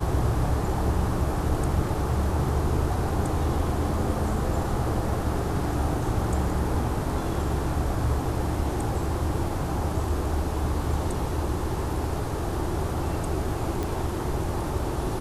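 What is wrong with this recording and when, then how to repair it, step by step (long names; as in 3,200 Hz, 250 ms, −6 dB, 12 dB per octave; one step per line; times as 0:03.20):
0:13.83: click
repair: click removal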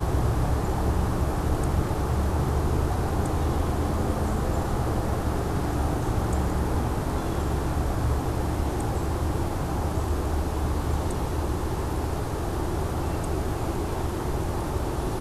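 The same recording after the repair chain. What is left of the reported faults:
none of them is left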